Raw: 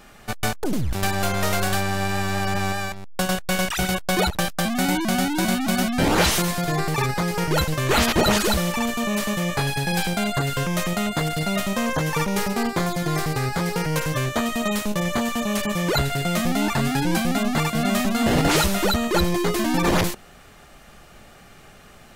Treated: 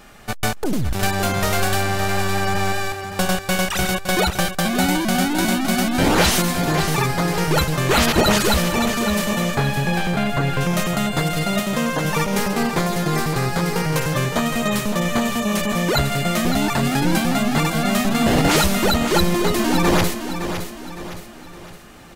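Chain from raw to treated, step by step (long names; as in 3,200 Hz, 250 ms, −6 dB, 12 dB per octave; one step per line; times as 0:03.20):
0:09.54–0:10.61: bass and treble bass +2 dB, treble −13 dB
0:11.59–0:12.05: Chebyshev high-pass filter 190 Hz
repeating echo 563 ms, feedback 43%, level −9 dB
level +2.5 dB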